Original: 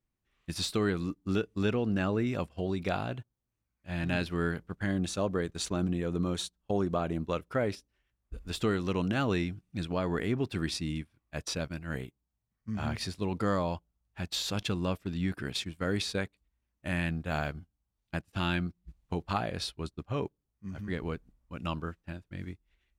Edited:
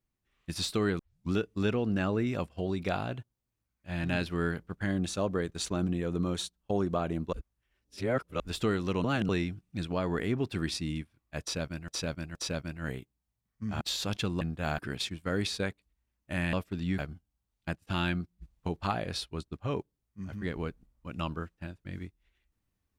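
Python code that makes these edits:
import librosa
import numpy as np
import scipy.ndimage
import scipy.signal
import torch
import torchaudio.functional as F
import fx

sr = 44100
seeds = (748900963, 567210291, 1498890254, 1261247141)

y = fx.edit(x, sr, fx.tape_start(start_s=0.99, length_s=0.33),
    fx.reverse_span(start_s=7.33, length_s=1.07),
    fx.reverse_span(start_s=9.04, length_s=0.25),
    fx.repeat(start_s=11.41, length_s=0.47, count=3),
    fx.cut(start_s=12.87, length_s=1.4),
    fx.swap(start_s=14.87, length_s=0.46, other_s=17.08, other_length_s=0.37), tone=tone)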